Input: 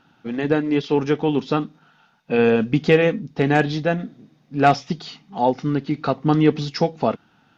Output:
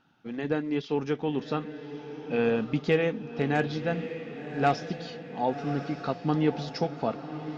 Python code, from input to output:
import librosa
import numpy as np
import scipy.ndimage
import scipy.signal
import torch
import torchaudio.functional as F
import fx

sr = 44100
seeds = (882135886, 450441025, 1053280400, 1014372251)

y = fx.echo_diffused(x, sr, ms=1115, feedback_pct=52, wet_db=-10.5)
y = F.gain(torch.from_numpy(y), -9.0).numpy()